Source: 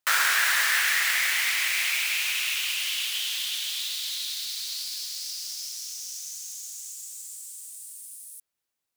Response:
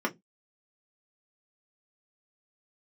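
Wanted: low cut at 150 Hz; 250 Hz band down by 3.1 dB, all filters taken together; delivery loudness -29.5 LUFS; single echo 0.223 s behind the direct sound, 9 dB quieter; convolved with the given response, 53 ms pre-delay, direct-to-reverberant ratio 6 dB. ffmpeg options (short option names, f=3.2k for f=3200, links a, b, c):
-filter_complex "[0:a]highpass=150,equalizer=f=250:t=o:g=-4,aecho=1:1:223:0.355,asplit=2[a][b];[1:a]atrim=start_sample=2205,adelay=53[c];[b][c]afir=irnorm=-1:irlink=0,volume=-15dB[d];[a][d]amix=inputs=2:normalize=0,volume=-5dB"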